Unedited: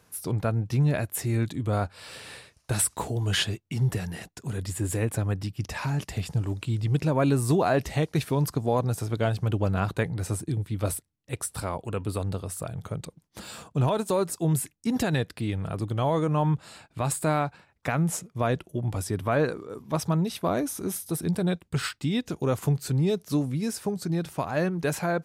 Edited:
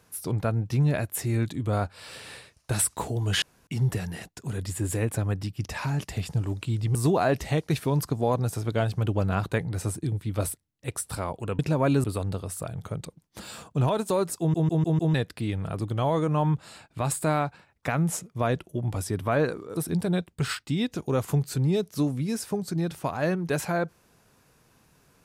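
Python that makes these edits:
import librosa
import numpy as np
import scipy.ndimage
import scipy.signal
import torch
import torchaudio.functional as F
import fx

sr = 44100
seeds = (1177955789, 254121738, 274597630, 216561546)

y = fx.edit(x, sr, fx.room_tone_fill(start_s=3.42, length_s=0.25),
    fx.move(start_s=6.95, length_s=0.45, to_s=12.04),
    fx.stutter_over(start_s=14.39, slice_s=0.15, count=5),
    fx.cut(start_s=19.76, length_s=1.34), tone=tone)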